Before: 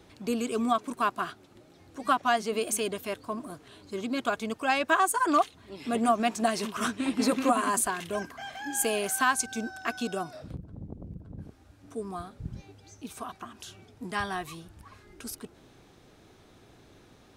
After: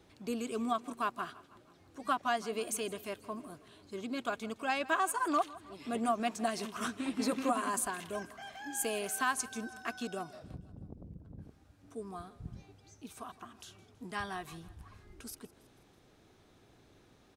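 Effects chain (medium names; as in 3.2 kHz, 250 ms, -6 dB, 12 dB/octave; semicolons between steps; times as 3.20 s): 14.52–15.22 s: bass shelf 130 Hz +10.5 dB; on a send: feedback delay 162 ms, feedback 54%, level -20 dB; on the sum: trim -7 dB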